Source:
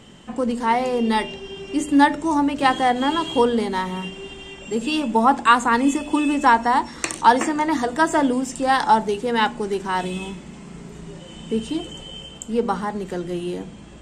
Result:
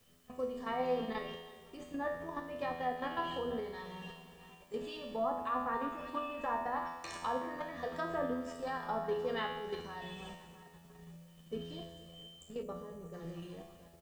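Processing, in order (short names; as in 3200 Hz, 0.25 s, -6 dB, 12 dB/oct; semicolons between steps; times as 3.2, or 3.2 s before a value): gate -32 dBFS, range -8 dB; split-band echo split 660 Hz, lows 0.237 s, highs 0.331 s, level -15.5 dB; treble ducked by the level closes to 1100 Hz, closed at -12.5 dBFS; high shelf 2000 Hz -4 dB; comb 1.7 ms, depth 56%; dynamic EQ 4300 Hz, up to +6 dB, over -44 dBFS, Q 1.3; level quantiser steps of 11 dB; resonator 84 Hz, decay 0.97 s, harmonics all, mix 90%; requantised 12-bit, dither triangular; spectral gain 12.63–13.14, 640–5700 Hz -10 dB; gain +1 dB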